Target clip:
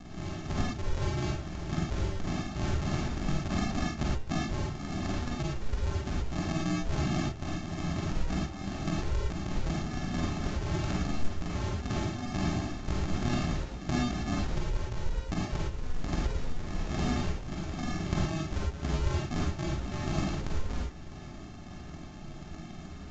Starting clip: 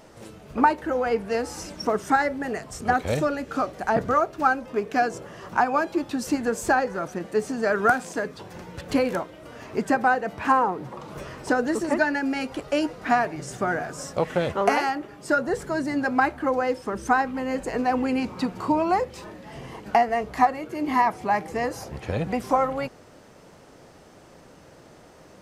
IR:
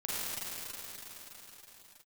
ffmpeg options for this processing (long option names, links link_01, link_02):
-filter_complex "[0:a]asetrate=83250,aresample=44100,atempo=0.529732,highshelf=frequency=2600:gain=8,bandreject=frequency=2400:width=11,acrossover=split=100[link_01][link_02];[link_02]acompressor=threshold=-32dB:ratio=20[link_03];[link_01][link_03]amix=inputs=2:normalize=0,lowpass=frequency=3300:width_type=q:width=0.5098,lowpass=frequency=3300:width_type=q:width=0.6013,lowpass=frequency=3300:width_type=q:width=0.9,lowpass=frequency=3300:width_type=q:width=2.563,afreqshift=-3900,aresample=16000,acrusher=samples=33:mix=1:aa=0.000001,aresample=44100,atempo=1.1,bandreject=frequency=110.9:width_type=h:width=4,bandreject=frequency=221.8:width_type=h:width=4,bandreject=frequency=332.7:width_type=h:width=4,bandreject=frequency=443.6:width_type=h:width=4,bandreject=frequency=554.5:width_type=h:width=4,bandreject=frequency=665.4:width_type=h:width=4,bandreject=frequency=776.3:width_type=h:width=4,bandreject=frequency=887.2:width_type=h:width=4,bandreject=frequency=998.1:width_type=h:width=4,bandreject=frequency=1109:width_type=h:width=4,bandreject=frequency=1219.9:width_type=h:width=4,bandreject=frequency=1330.8:width_type=h:width=4,bandreject=frequency=1441.7:width_type=h:width=4,bandreject=frequency=1552.6:width_type=h:width=4,bandreject=frequency=1663.5:width_type=h:width=4,bandreject=frequency=1774.4:width_type=h:width=4,bandreject=frequency=1885.3:width_type=h:width=4,bandreject=frequency=1996.2:width_type=h:width=4,bandreject=frequency=2107.1:width_type=h:width=4,bandreject=frequency=2218:width_type=h:width=4,bandreject=frequency=2328.9:width_type=h:width=4,bandreject=frequency=2439.8:width_type=h:width=4,bandreject=frequency=2550.7:width_type=h:width=4,bandreject=frequency=2661.6:width_type=h:width=4,bandreject=frequency=2772.5:width_type=h:width=4,bandreject=frequency=2883.4:width_type=h:width=4,bandreject=frequency=2994.3:width_type=h:width=4,bandreject=frequency=3105.2:width_type=h:width=4,bandreject=frequency=3216.1:width_type=h:width=4,bandreject=frequency=3327:width_type=h:width=4,bandreject=frequency=3437.9:width_type=h:width=4,bandreject=frequency=3548.8:width_type=h:width=4[link_04];[1:a]atrim=start_sample=2205,afade=type=out:start_time=0.17:duration=0.01,atrim=end_sample=7938[link_05];[link_04][link_05]afir=irnorm=-1:irlink=0,volume=6dB" -ar 16000 -c:a pcm_mulaw